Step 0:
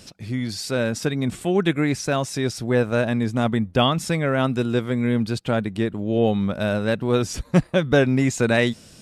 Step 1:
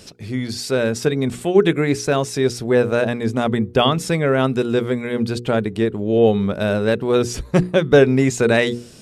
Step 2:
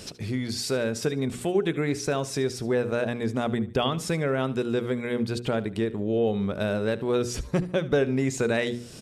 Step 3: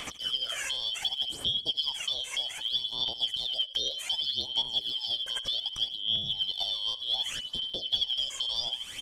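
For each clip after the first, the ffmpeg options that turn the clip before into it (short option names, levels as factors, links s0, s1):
-af "equalizer=f=420:w=4:g=8,bandreject=f=60:t=h:w=6,bandreject=f=120:t=h:w=6,bandreject=f=180:t=h:w=6,bandreject=f=240:t=h:w=6,bandreject=f=300:t=h:w=6,bandreject=f=360:t=h:w=6,bandreject=f=420:t=h:w=6,bandreject=f=480:t=h:w=6,volume=1.33"
-af "acompressor=threshold=0.0251:ratio=2,aecho=1:1:74|148|222:0.133|0.0427|0.0137,volume=1.19"
-filter_complex "[0:a]afftfilt=real='real(if(lt(b,272),68*(eq(floor(b/68),0)*2+eq(floor(b/68),1)*3+eq(floor(b/68),2)*0+eq(floor(b/68),3)*1)+mod(b,68),b),0)':imag='imag(if(lt(b,272),68*(eq(floor(b/68),0)*2+eq(floor(b/68),1)*3+eq(floor(b/68),2)*0+eq(floor(b/68),3)*1)+mod(b,68),b),0)':win_size=2048:overlap=0.75,acrossover=split=590|2400|6500[s0][s1][s2][s3];[s0]acompressor=threshold=0.00282:ratio=4[s4];[s1]acompressor=threshold=0.00501:ratio=4[s5];[s2]acompressor=threshold=0.0141:ratio=4[s6];[s3]acompressor=threshold=0.00282:ratio=4[s7];[s4][s5][s6][s7]amix=inputs=4:normalize=0,aphaser=in_gain=1:out_gain=1:delay=1.9:decay=0.62:speed=0.65:type=sinusoidal,volume=1.19"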